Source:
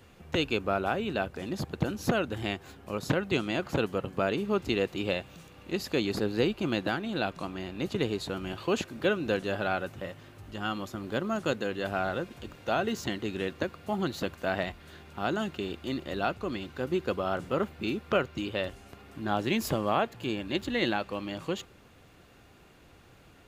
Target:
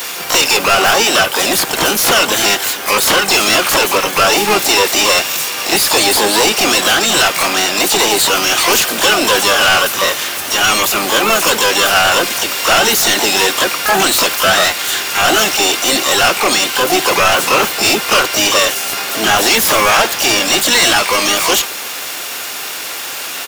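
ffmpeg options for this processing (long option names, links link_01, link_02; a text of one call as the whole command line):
ffmpeg -i in.wav -filter_complex "[0:a]aemphasis=mode=production:type=riaa,asplit=2[link_01][link_02];[link_02]highpass=frequency=720:poles=1,volume=35dB,asoftclip=type=tanh:threshold=-9dB[link_03];[link_01][link_03]amix=inputs=2:normalize=0,lowpass=frequency=7000:poles=1,volume=-6dB,asplit=3[link_04][link_05][link_06];[link_05]asetrate=35002,aresample=44100,atempo=1.25992,volume=-11dB[link_07];[link_06]asetrate=88200,aresample=44100,atempo=0.5,volume=-1dB[link_08];[link_04][link_07][link_08]amix=inputs=3:normalize=0,volume=3.5dB" out.wav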